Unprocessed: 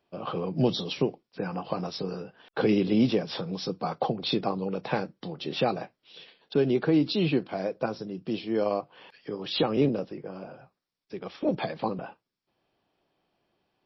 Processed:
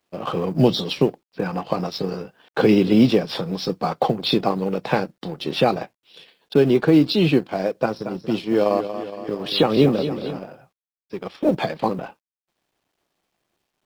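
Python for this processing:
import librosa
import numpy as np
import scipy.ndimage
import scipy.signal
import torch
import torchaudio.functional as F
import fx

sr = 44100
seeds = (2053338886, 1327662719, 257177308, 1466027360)

y = fx.law_mismatch(x, sr, coded='A')
y = fx.echo_warbled(y, sr, ms=232, feedback_pct=60, rate_hz=2.8, cents=55, wet_db=-10.5, at=(7.74, 10.39))
y = y * 10.0 ** (8.5 / 20.0)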